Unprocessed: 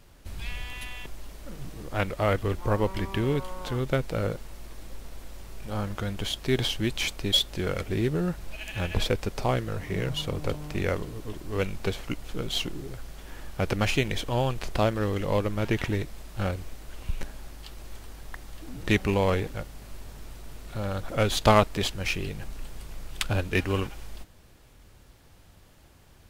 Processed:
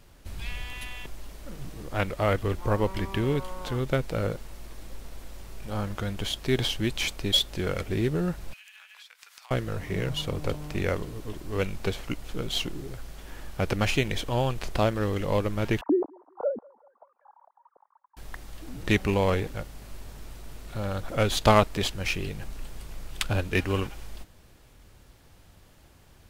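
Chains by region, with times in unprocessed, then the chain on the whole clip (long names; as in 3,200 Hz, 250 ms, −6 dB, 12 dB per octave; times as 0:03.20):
0:08.53–0:09.51: high-pass filter 1,200 Hz 24 dB per octave + downward compressor 12 to 1, threshold −46 dBFS
0:15.81–0:18.17: three sine waves on the formant tracks + Butterworth low-pass 950 Hz + feedback echo with a high-pass in the loop 191 ms, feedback 77%, high-pass 730 Hz, level −22 dB
whole clip: no processing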